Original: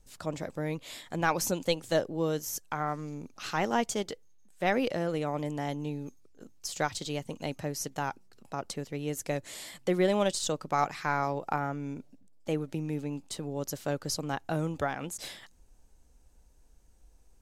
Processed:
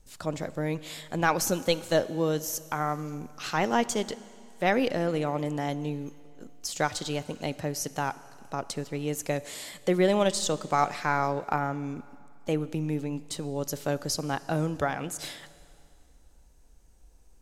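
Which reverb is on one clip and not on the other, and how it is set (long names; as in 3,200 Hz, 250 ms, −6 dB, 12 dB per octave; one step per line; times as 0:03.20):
four-comb reverb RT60 2.4 s, combs from 26 ms, DRR 16.5 dB
level +3 dB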